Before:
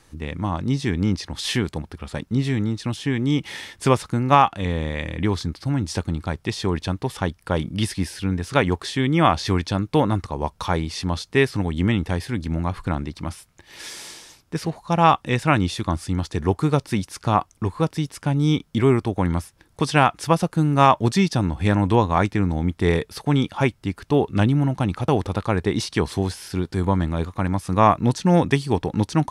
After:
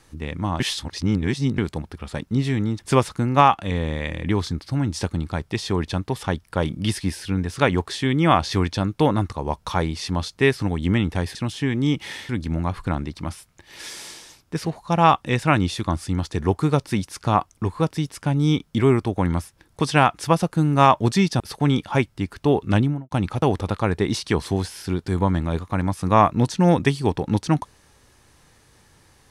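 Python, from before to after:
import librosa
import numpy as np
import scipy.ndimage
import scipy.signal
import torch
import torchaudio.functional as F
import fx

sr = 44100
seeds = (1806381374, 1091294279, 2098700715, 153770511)

y = fx.studio_fade_out(x, sr, start_s=24.43, length_s=0.34)
y = fx.edit(y, sr, fx.reverse_span(start_s=0.6, length_s=0.98),
    fx.move(start_s=2.79, length_s=0.94, to_s=12.29),
    fx.cut(start_s=21.4, length_s=1.66), tone=tone)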